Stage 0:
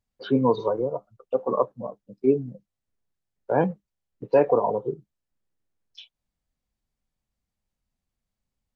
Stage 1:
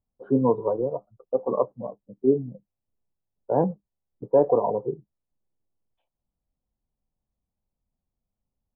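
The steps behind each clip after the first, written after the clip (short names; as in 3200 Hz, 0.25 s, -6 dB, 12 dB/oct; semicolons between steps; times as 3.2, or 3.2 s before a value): LPF 1000 Hz 24 dB/oct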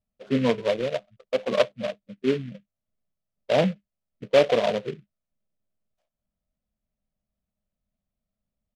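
comb 1.7 ms, depth 31%; small resonant body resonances 210/620/1300 Hz, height 10 dB, ringing for 40 ms; noise-modulated delay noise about 2200 Hz, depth 0.068 ms; gain -4 dB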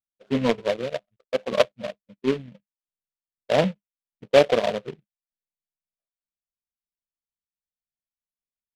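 power-law curve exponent 1.4; gain +4 dB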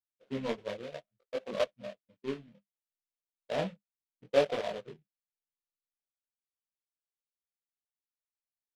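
detuned doubles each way 23 cents; gain -8 dB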